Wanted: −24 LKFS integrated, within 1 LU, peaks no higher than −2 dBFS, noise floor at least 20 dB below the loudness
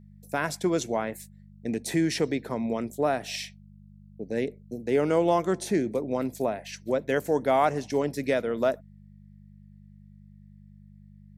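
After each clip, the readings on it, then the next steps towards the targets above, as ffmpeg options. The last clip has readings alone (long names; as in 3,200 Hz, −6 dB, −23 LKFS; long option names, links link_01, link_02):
mains hum 50 Hz; hum harmonics up to 200 Hz; level of the hum −48 dBFS; integrated loudness −28.0 LKFS; sample peak −11.0 dBFS; target loudness −24.0 LKFS
→ -af "bandreject=frequency=50:width_type=h:width=4,bandreject=frequency=100:width_type=h:width=4,bandreject=frequency=150:width_type=h:width=4,bandreject=frequency=200:width_type=h:width=4"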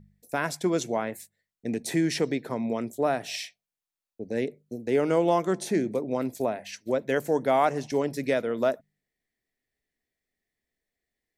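mains hum none found; integrated loudness −28.0 LKFS; sample peak −11.0 dBFS; target loudness −24.0 LKFS
→ -af "volume=4dB"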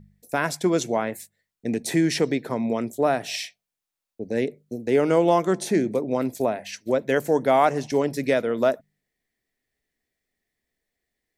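integrated loudness −24.0 LKFS; sample peak −7.0 dBFS; background noise floor −86 dBFS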